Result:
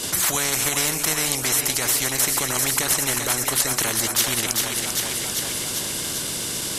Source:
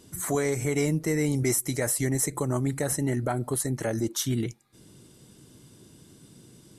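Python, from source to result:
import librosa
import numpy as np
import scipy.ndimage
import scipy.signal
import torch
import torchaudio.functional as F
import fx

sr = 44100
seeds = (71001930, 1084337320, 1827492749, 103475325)

p1 = fx.peak_eq(x, sr, hz=690.0, db=-6.0, octaves=2.4)
p2 = fx.level_steps(p1, sr, step_db=14)
p3 = p1 + (p2 * 10.0 ** (0.5 / 20.0))
p4 = fx.low_shelf(p3, sr, hz=150.0, db=-11.5)
p5 = p4 + fx.echo_split(p4, sr, split_hz=360.0, low_ms=166, high_ms=394, feedback_pct=52, wet_db=-12.5, dry=0)
p6 = fx.rider(p5, sr, range_db=10, speed_s=0.5)
p7 = fx.spectral_comp(p6, sr, ratio=4.0)
y = p7 * 10.0 ** (4.5 / 20.0)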